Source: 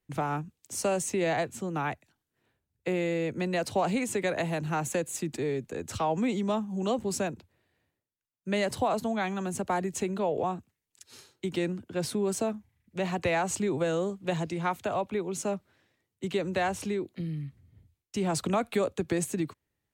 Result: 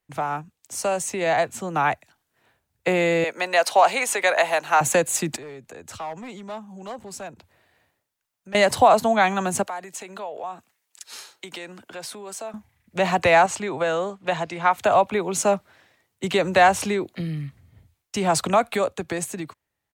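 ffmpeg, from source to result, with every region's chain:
ffmpeg -i in.wav -filter_complex "[0:a]asettb=1/sr,asplit=3[link_01][link_02][link_03];[link_01]atrim=end=3.244[link_04];[link_02]atrim=start=3.24:end=4.81,asetpts=PTS-STARTPTS,afade=type=in:duration=0.004:curve=qsin,afade=type=out:start_time=1.566:duration=0.004:curve=qsin,highpass=590,bandreject=frequency=7600:width=11[link_05];[link_03]atrim=start=4.806[link_06];[link_04][link_05]acrossfade=duration=0.004:curve1=hsin:curve2=qsin[link_07];[link_07][link_06]acrossfade=duration=0.004:curve1=qsin:curve2=hsin,asettb=1/sr,asplit=3[link_08][link_09][link_10];[link_08]atrim=end=5.364[link_11];[link_09]atrim=start=5.36:end=8.55,asetpts=PTS-STARTPTS,afade=type=in:duration=0.004:curve=qsin,afade=type=out:start_time=3.186:duration=0.004:curve=qsin,asoftclip=type=hard:threshold=-24.5dB,acompressor=threshold=-58dB:ratio=2:attack=3.2:release=140:knee=1:detection=peak[link_12];[link_10]atrim=start=8.546[link_13];[link_11][link_12]acrossfade=duration=0.004:curve1=hsin:curve2=qsin[link_14];[link_14][link_13]acrossfade=duration=0.004:curve1=qsin:curve2=hsin,asettb=1/sr,asplit=3[link_15][link_16][link_17];[link_15]atrim=end=9.634[link_18];[link_16]atrim=start=9.63:end=12.54,asetpts=PTS-STARTPTS,afade=type=in:duration=0.004:curve=qsin,afade=type=out:start_time=2.906:duration=0.004:curve=qsin,highpass=frequency=620:poles=1,acompressor=threshold=-46dB:ratio=3:attack=3.2:release=140:knee=1:detection=peak[link_19];[link_17]atrim=start=12.536[link_20];[link_18][link_19]acrossfade=duration=0.004:curve1=hsin:curve2=qsin[link_21];[link_21][link_20]acrossfade=duration=0.004:curve1=qsin:curve2=hsin,asettb=1/sr,asplit=3[link_22][link_23][link_24];[link_22]atrim=end=13.464[link_25];[link_23]atrim=start=13.46:end=14.78,asetpts=PTS-STARTPTS,afade=type=in:duration=0.004:curve=qsin,afade=type=out:start_time=1.316:duration=0.004:curve=qsin,lowpass=frequency=2900:poles=1,lowshelf=frequency=490:gain=-8.5[link_26];[link_24]atrim=start=14.776[link_27];[link_25][link_26]acrossfade=duration=0.004:curve1=hsin:curve2=qsin[link_28];[link_28][link_27]acrossfade=duration=0.004:curve1=qsin:curve2=hsin,firequalizer=gain_entry='entry(360,0);entry(670,9);entry(2900,6)':delay=0.05:min_phase=1,dynaudnorm=framelen=110:gausssize=31:maxgain=11.5dB,volume=-3dB" out.wav

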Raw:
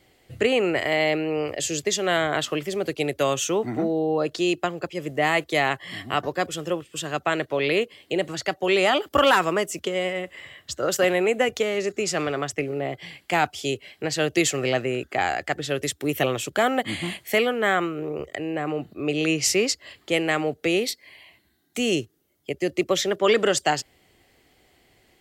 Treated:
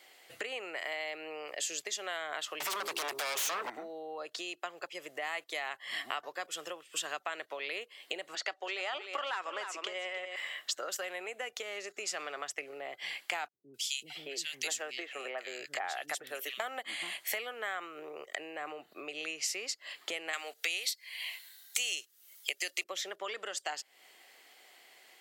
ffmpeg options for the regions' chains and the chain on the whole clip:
ffmpeg -i in.wav -filter_complex "[0:a]asettb=1/sr,asplit=3[link_01][link_02][link_03];[link_01]atrim=end=2.604[link_04];[link_02]atrim=start=2.6:end=3.7,asetpts=PTS-STARTPTS,afade=type=in:duration=0.004:curve=qsin,afade=type=out:start_time=1.096:duration=0.004:curve=qsin,bandreject=frequency=68.26:width_type=h:width=4,bandreject=frequency=136.52:width_type=h:width=4,bandreject=frequency=204.78:width_type=h:width=4,bandreject=frequency=273.04:width_type=h:width=4,bandreject=frequency=341.3:width_type=h:width=4,bandreject=frequency=409.56:width_type=h:width=4,acompressor=threshold=-32dB:ratio=8:attack=3.2:release=140:knee=1:detection=peak,aeval=exprs='0.1*sin(PI/2*7.08*val(0)/0.1)':channel_layout=same[link_05];[link_03]atrim=start=3.696[link_06];[link_04][link_05]acrossfade=duration=0.004:curve1=hsin:curve2=qsin[link_07];[link_07][link_06]acrossfade=duration=0.004:curve1=qsin:curve2=hsin,asettb=1/sr,asplit=3[link_08][link_09][link_10];[link_08]atrim=end=8.354[link_11];[link_09]atrim=start=8.35:end=10.36,asetpts=PTS-STARTPTS,afade=type=in:duration=0.004:curve=qsin,afade=type=out:start_time=2.006:duration=0.004:curve=qsin,highpass=260,lowpass=6100,aecho=1:1:302:0.251,atrim=end_sample=88641[link_12];[link_10]atrim=start=10.356[link_13];[link_11][link_12]acrossfade=duration=0.004:curve1=hsin:curve2=qsin[link_14];[link_14][link_13]acrossfade=duration=0.004:curve1=qsin:curve2=hsin,asettb=1/sr,asplit=3[link_15][link_16][link_17];[link_15]atrim=end=13.484[link_18];[link_16]atrim=start=13.48:end=16.6,asetpts=PTS-STARTPTS,afade=type=in:duration=0.004:curve=qsin,afade=type=out:start_time=3.116:duration=0.004:curve=qsin,highpass=120,acrossover=split=230|2400[link_19][link_20][link_21];[link_21]adelay=260[link_22];[link_20]adelay=620[link_23];[link_19][link_23][link_22]amix=inputs=3:normalize=0,atrim=end_sample=137592[link_24];[link_17]atrim=start=16.596[link_25];[link_18][link_24]acrossfade=duration=0.004:curve1=hsin:curve2=qsin[link_26];[link_26][link_25]acrossfade=duration=0.004:curve1=qsin:curve2=hsin,asettb=1/sr,asplit=3[link_27][link_28][link_29];[link_27]atrim=end=20.334[link_30];[link_28]atrim=start=20.33:end=22.84,asetpts=PTS-STARTPTS,afade=type=in:duration=0.004:curve=qsin,afade=type=out:start_time=2.506:duration=0.004:curve=qsin,highpass=300,tiltshelf=frequency=1500:gain=-9.5,acontrast=28[link_31];[link_29]atrim=start=22.836[link_32];[link_30][link_31]acrossfade=duration=0.004:curve1=hsin:curve2=qsin[link_33];[link_33][link_32]acrossfade=duration=0.004:curve1=qsin:curve2=hsin,acompressor=threshold=-35dB:ratio=12,highpass=760,volume=4dB" out.wav

